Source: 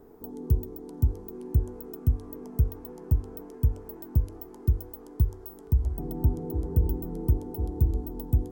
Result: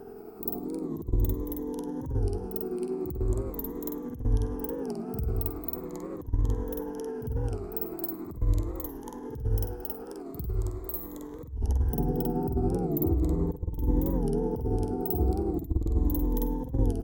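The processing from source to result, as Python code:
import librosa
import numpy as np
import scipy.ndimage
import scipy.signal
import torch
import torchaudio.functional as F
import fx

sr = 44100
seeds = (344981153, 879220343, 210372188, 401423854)

y = fx.spec_ripple(x, sr, per_octave=1.1, drift_hz=-0.81, depth_db=11)
y = fx.vibrato(y, sr, rate_hz=6.3, depth_cents=21.0)
y = fx.hum_notches(y, sr, base_hz=50, count=2)
y = fx.over_compress(y, sr, threshold_db=-27.0, ratio=-0.5)
y = fx.stretch_grains(y, sr, factor=2.0, grain_ms=189.0)
y = fx.echo_feedback(y, sr, ms=105, feedback_pct=41, wet_db=-24.0)
y = fx.record_warp(y, sr, rpm=45.0, depth_cents=160.0)
y = y * librosa.db_to_amplitude(3.0)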